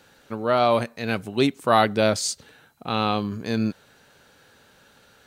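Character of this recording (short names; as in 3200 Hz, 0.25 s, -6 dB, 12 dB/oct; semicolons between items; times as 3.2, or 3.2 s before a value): noise floor -57 dBFS; spectral tilt -4.5 dB/oct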